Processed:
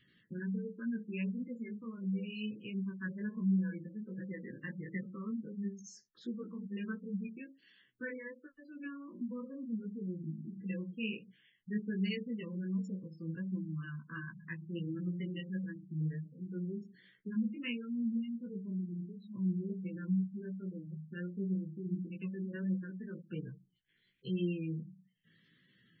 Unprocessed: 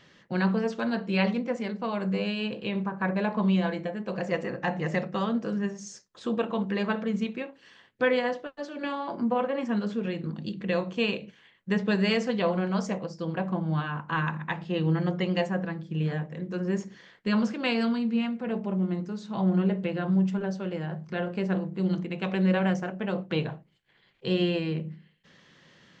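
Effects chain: spectral gate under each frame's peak -15 dB strong; Butterworth band-stop 750 Hz, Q 0.59; chorus 1.4 Hz, delay 15.5 ms, depth 3 ms; gain -5.5 dB

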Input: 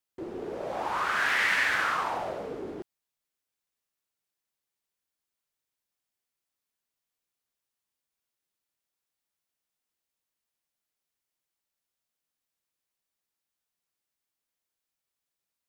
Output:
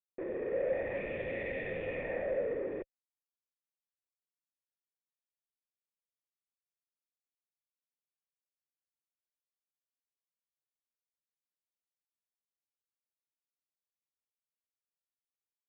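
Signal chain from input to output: minimum comb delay 0.32 ms; treble ducked by the level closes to 2200 Hz, closed at -31 dBFS; bell 1100 Hz -14 dB 1 oct; sample leveller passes 5; sine folder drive 7 dB, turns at -15.5 dBFS; vocal tract filter e; gain -8 dB

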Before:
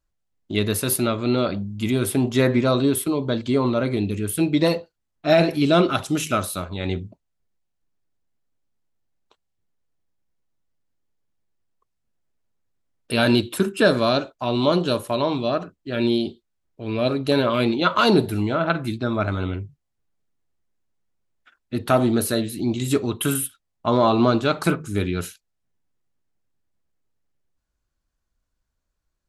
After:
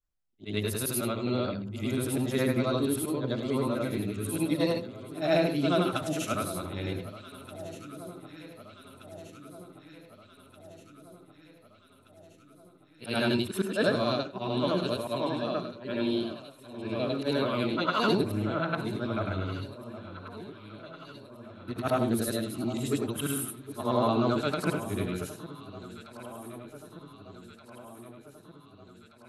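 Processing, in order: short-time reversal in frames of 0.211 s; echo with dull and thin repeats by turns 0.763 s, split 1200 Hz, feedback 77%, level -13 dB; gain -5 dB

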